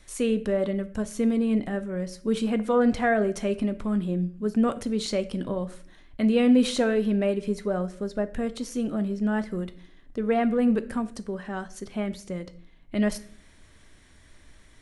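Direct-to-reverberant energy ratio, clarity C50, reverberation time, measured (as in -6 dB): 11.0 dB, 16.5 dB, 0.50 s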